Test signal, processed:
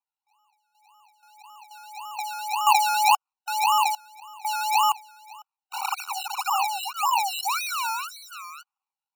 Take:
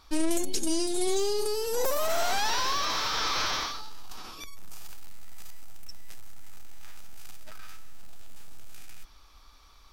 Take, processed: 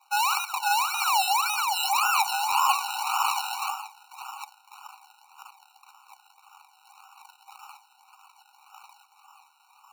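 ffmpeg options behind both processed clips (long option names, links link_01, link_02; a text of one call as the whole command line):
ffmpeg -i in.wav -af "adynamicequalizer=threshold=0.00631:dfrequency=350:dqfactor=0.72:tfrequency=350:tqfactor=0.72:attack=5:release=100:ratio=0.375:range=2.5:mode=boostabove:tftype=bell,acrusher=samples=30:mix=1:aa=0.000001:lfo=1:lforange=18:lforate=1.8,afftfilt=real='re*eq(mod(floor(b*sr/1024/750),2),1)':imag='im*eq(mod(floor(b*sr/1024/750),2),1)':win_size=1024:overlap=0.75,volume=9dB" out.wav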